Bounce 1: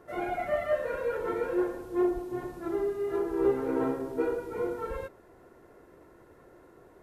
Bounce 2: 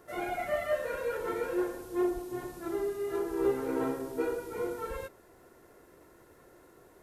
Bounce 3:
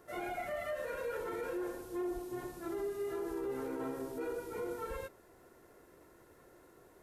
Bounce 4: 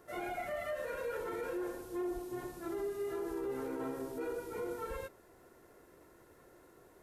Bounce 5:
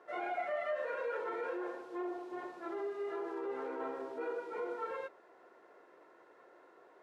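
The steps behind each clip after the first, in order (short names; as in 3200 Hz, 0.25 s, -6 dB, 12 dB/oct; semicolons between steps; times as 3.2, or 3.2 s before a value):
high shelf 3100 Hz +12 dB; gain -3 dB
limiter -28 dBFS, peak gain reduction 10 dB; gain -3 dB
nothing audible
BPF 400–3500 Hz; bell 890 Hz +5 dB 2.4 oct; gain -1 dB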